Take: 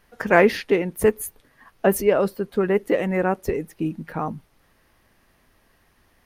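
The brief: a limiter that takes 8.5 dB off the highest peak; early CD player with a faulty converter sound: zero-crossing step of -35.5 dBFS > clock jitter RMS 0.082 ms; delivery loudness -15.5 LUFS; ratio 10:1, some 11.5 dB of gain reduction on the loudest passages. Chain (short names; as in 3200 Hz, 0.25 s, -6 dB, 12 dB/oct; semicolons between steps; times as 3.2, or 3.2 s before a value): compressor 10:1, threshold -23 dBFS; limiter -19 dBFS; zero-crossing step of -35.5 dBFS; clock jitter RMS 0.082 ms; gain +15.5 dB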